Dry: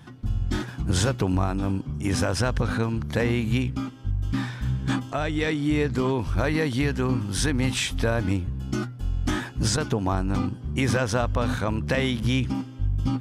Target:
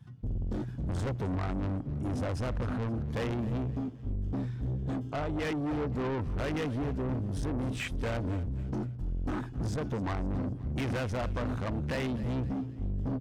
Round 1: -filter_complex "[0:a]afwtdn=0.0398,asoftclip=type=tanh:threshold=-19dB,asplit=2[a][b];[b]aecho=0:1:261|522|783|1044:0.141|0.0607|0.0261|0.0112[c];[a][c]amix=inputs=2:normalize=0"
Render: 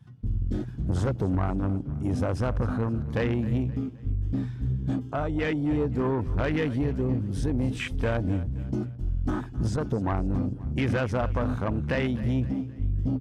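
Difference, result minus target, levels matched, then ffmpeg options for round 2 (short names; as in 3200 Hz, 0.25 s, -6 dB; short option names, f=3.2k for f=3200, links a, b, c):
soft clip: distortion -10 dB
-filter_complex "[0:a]afwtdn=0.0398,asoftclip=type=tanh:threshold=-29.5dB,asplit=2[a][b];[b]aecho=0:1:261|522|783|1044:0.141|0.0607|0.0261|0.0112[c];[a][c]amix=inputs=2:normalize=0"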